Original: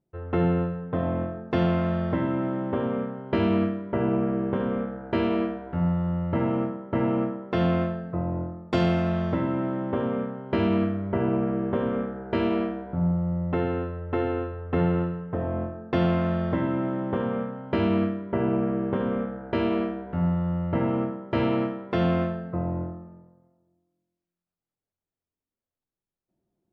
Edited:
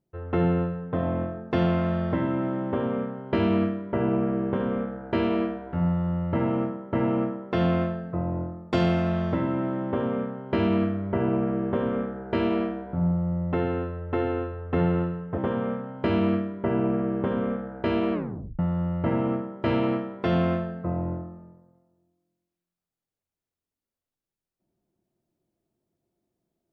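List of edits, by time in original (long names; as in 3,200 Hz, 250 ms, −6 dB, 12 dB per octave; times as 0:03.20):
0:15.38–0:17.07: remove
0:19.82: tape stop 0.46 s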